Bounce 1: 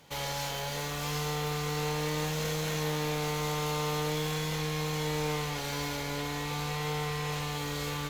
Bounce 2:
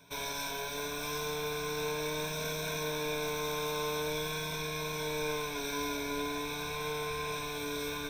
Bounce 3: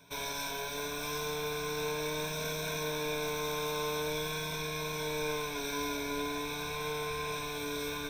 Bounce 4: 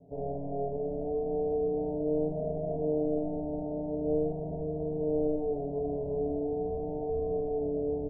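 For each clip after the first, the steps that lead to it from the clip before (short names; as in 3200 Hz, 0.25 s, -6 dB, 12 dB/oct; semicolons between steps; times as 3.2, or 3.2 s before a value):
ripple EQ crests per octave 1.6, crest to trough 18 dB; gain -5 dB
nothing audible
steep low-pass 770 Hz 96 dB/oct; on a send: early reflections 23 ms -8.5 dB, 50 ms -5 dB, 79 ms -6 dB; on the sum: gain +6 dB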